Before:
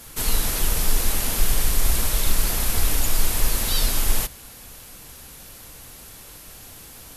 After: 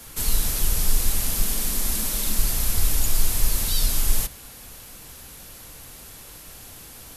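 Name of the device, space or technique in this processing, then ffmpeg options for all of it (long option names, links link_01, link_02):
one-band saturation: -filter_complex "[0:a]asettb=1/sr,asplit=3[link_01][link_02][link_03];[link_01]atrim=end=1.414[link_04];[link_02]atrim=start=1.41:end=2.39,asetpts=PTS-STARTPTS,afade=type=in:duration=0.004:curve=qsin,afade=type=out:start_time=0.976:duration=0.004:curve=qsin,lowshelf=frequency=160:width_type=q:width=3:gain=-7[link_05];[link_03]atrim=start=2.386[link_06];[link_04][link_05]acrossfade=duration=0.004:curve1=hsin:curve2=qsin[link_07];[link_07][link_06]acrossfade=duration=0.004:curve1=qsin:curve2=hsin,acrossover=split=210|3900[link_08][link_09][link_10];[link_09]asoftclip=type=tanh:threshold=-36.5dB[link_11];[link_08][link_11][link_10]amix=inputs=3:normalize=0"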